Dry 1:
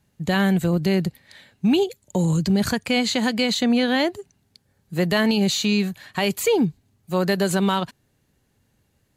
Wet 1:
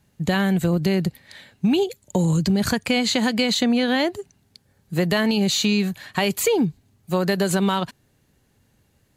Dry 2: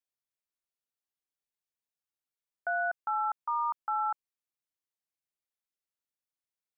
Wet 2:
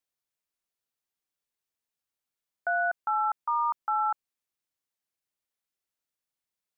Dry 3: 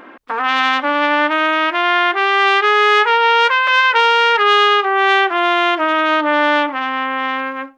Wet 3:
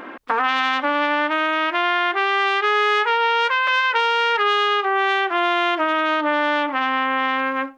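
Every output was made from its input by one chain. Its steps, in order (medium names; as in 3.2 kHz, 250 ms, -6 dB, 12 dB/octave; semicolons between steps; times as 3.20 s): compression 4:1, threshold -20 dBFS; trim +3.5 dB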